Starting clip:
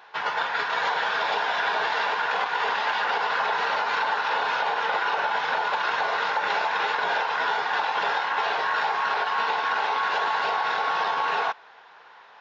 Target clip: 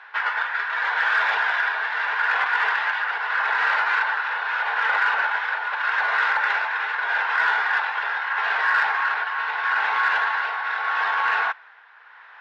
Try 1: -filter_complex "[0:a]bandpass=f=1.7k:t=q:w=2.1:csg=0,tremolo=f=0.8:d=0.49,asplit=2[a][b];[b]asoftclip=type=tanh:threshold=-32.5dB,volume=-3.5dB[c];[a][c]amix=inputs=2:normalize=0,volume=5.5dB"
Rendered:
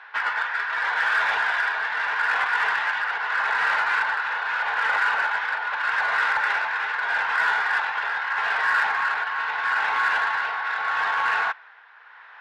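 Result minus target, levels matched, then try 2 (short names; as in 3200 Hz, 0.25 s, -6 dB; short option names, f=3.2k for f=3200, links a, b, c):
soft clip: distortion +8 dB
-filter_complex "[0:a]bandpass=f=1.7k:t=q:w=2.1:csg=0,tremolo=f=0.8:d=0.49,asplit=2[a][b];[b]asoftclip=type=tanh:threshold=-25dB,volume=-3.5dB[c];[a][c]amix=inputs=2:normalize=0,volume=5.5dB"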